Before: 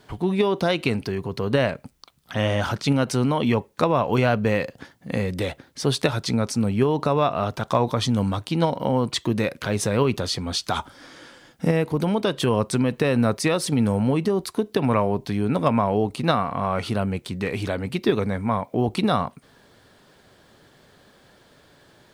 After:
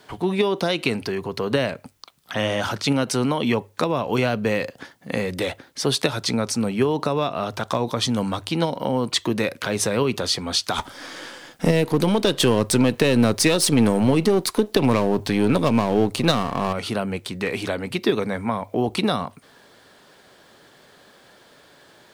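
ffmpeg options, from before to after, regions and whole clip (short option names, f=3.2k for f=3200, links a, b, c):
-filter_complex "[0:a]asettb=1/sr,asplit=3[a][b][c];[a]atrim=end=10.784[d];[b]atrim=start=10.78:end=16.73,asetpts=PTS-STARTPTS,afade=t=in:d=0.004:c=qsin,afade=t=out:st=5.946:d=0.004:c=qsin,aeval=exprs='if(lt(val(0),0),0.447*val(0),val(0))':c=same,acontrast=88,bandreject=f=1.4k:w=30[e];[c]atrim=start=16.726[f];[d][e]acrossfade=d=0.004:c1=hsin:c2=qsin[g];[g][f]acrossfade=d=0.004:c1=qsin:c2=hsin,lowshelf=f=200:g=-11.5,bandreject=f=50:t=h:w=6,bandreject=f=100:t=h:w=6,acrossover=split=400|3000[h][i][j];[i]acompressor=threshold=-28dB:ratio=6[k];[h][k][j]amix=inputs=3:normalize=0,volume=4.5dB"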